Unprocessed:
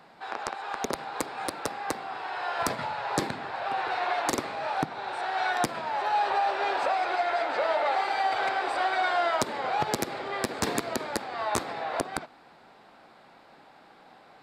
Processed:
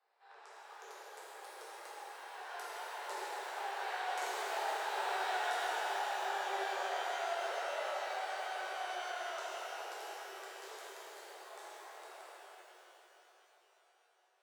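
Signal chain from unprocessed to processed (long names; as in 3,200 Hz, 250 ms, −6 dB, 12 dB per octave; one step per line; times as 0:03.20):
source passing by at 0:05.18, 9 m/s, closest 2.1 metres
Butterworth high-pass 370 Hz 72 dB per octave
downward compressor 5 to 1, threshold −43 dBFS, peak gain reduction 15.5 dB
tape delay 112 ms, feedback 90%, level −10 dB, low-pass 2,700 Hz
reverb with rising layers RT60 3.1 s, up +12 semitones, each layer −8 dB, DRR −9 dB
level −2 dB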